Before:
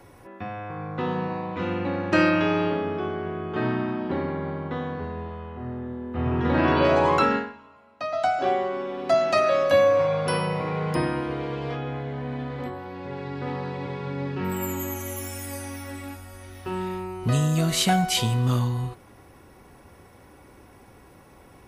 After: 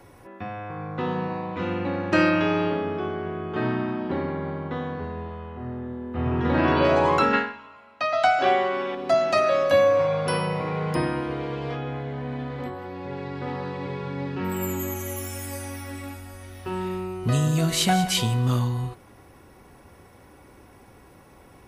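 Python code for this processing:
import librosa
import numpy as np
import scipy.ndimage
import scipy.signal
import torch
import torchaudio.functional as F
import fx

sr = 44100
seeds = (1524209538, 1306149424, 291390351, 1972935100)

y = fx.peak_eq(x, sr, hz=2400.0, db=9.0, octaves=2.7, at=(7.33, 8.95))
y = fx.echo_single(y, sr, ms=184, db=-12.5, at=(12.75, 18.21), fade=0.02)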